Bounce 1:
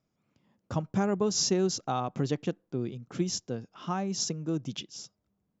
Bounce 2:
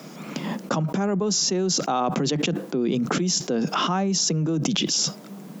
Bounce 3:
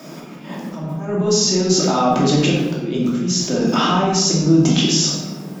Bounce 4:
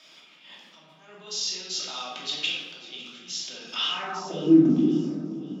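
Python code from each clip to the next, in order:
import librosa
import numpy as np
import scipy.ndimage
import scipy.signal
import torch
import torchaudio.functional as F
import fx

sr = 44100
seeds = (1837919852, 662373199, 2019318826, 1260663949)

y1 = scipy.signal.sosfilt(scipy.signal.butter(12, 150.0, 'highpass', fs=sr, output='sos'), x)
y1 = fx.env_flatten(y1, sr, amount_pct=100)
y2 = fx.auto_swell(y1, sr, attack_ms=284.0)
y2 = fx.room_shoebox(y2, sr, seeds[0], volume_m3=590.0, walls='mixed', distance_m=2.7)
y3 = fx.filter_sweep_bandpass(y2, sr, from_hz=3300.0, to_hz=290.0, start_s=3.89, end_s=4.58, q=3.1)
y3 = fx.echo_alternate(y3, sr, ms=275, hz=1100.0, feedback_pct=63, wet_db=-13.5)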